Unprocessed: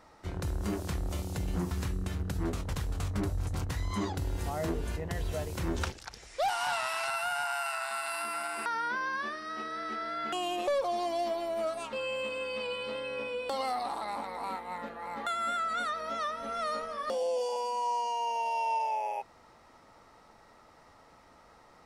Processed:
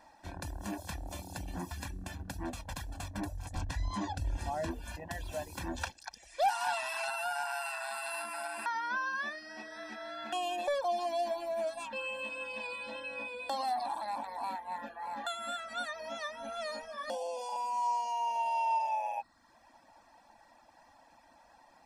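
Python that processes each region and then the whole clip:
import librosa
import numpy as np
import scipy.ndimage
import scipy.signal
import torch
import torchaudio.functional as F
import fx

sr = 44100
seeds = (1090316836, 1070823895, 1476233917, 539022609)

y = fx.chain(x, sr, fx.lowpass(hz=8600.0, slope=12),
    fx.low_shelf(hz=90.0, db=11.0), at=(3.56, 4.71))
y = fx.dereverb_blind(y, sr, rt60_s=0.71)
y = fx.low_shelf_res(y, sr, hz=210.0, db=-8.5, q=1.5)
y = y + 0.91 * np.pad(y, (int(1.2 * sr / 1000.0), 0))[:len(y)]
y = F.gain(torch.from_numpy(y), -3.5).numpy()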